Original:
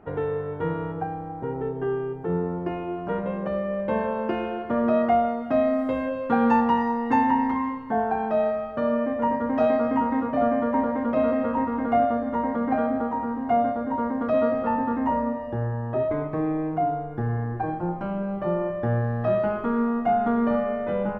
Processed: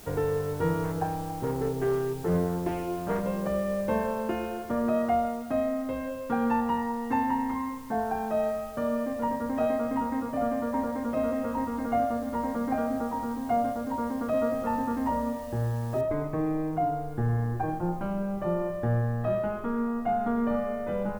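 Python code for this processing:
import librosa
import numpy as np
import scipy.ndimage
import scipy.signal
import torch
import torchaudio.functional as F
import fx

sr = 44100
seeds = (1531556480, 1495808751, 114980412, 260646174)

y = fx.doppler_dist(x, sr, depth_ms=0.35, at=(0.84, 3.22))
y = fx.noise_floor_step(y, sr, seeds[0], at_s=16.01, before_db=-50, after_db=-60, tilt_db=0.0)
y = fx.low_shelf(y, sr, hz=73.0, db=10.5)
y = fx.rider(y, sr, range_db=10, speed_s=2.0)
y = F.gain(torch.from_numpy(y), -5.0).numpy()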